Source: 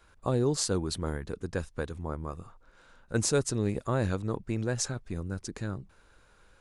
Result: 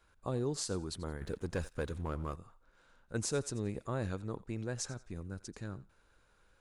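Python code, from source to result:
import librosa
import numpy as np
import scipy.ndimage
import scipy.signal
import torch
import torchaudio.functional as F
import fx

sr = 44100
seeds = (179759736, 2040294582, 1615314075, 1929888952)

y = fx.echo_thinned(x, sr, ms=88, feedback_pct=28, hz=970.0, wet_db=-17)
y = fx.leveller(y, sr, passes=2, at=(1.21, 2.36))
y = y * librosa.db_to_amplitude(-8.0)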